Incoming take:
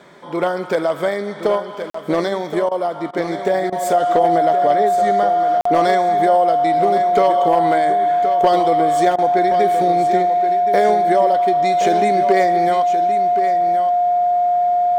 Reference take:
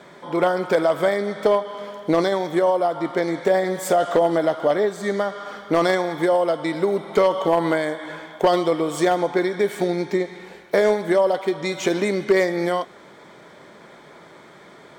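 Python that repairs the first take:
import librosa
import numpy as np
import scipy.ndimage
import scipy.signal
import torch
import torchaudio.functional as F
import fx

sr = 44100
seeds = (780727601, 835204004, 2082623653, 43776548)

y = fx.notch(x, sr, hz=710.0, q=30.0)
y = fx.fix_interpolate(y, sr, at_s=(1.9, 5.61), length_ms=44.0)
y = fx.fix_interpolate(y, sr, at_s=(2.69, 3.11, 3.7, 9.16), length_ms=22.0)
y = fx.fix_echo_inverse(y, sr, delay_ms=1072, level_db=-9.5)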